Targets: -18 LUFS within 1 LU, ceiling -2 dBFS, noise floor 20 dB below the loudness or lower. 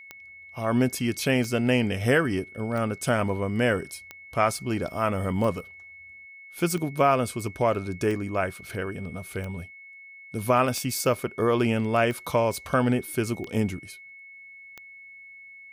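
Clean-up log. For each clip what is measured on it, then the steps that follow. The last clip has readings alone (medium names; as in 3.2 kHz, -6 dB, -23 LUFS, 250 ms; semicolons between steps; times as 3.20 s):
clicks found 12; steady tone 2.2 kHz; tone level -44 dBFS; loudness -26.0 LUFS; peak level -8.0 dBFS; loudness target -18.0 LUFS
-> de-click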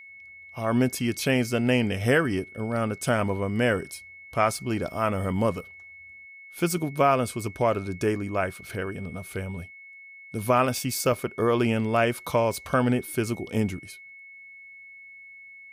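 clicks found 0; steady tone 2.2 kHz; tone level -44 dBFS
-> band-stop 2.2 kHz, Q 30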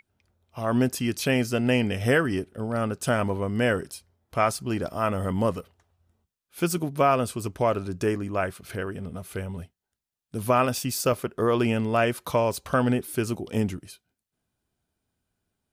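steady tone not found; loudness -26.0 LUFS; peak level -8.5 dBFS; loudness target -18.0 LUFS
-> trim +8 dB; peak limiter -2 dBFS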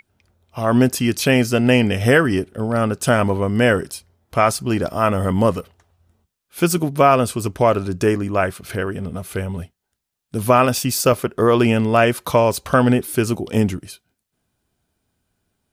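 loudness -18.0 LUFS; peak level -2.0 dBFS; noise floor -79 dBFS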